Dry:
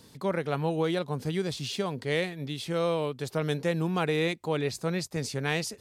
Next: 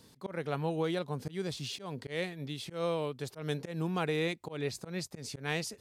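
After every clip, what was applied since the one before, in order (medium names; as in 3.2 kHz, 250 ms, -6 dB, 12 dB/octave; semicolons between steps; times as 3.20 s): slow attack 144 ms; trim -4.5 dB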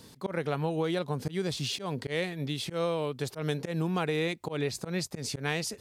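compression 3:1, threshold -34 dBFS, peak gain reduction 5.5 dB; trim +7 dB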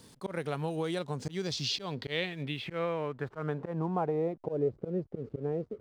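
low-pass sweep 10 kHz -> 460 Hz, 0.80–4.77 s; hysteresis with a dead band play -52 dBFS; trim -3.5 dB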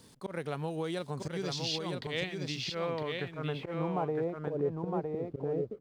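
delay 961 ms -4 dB; trim -2 dB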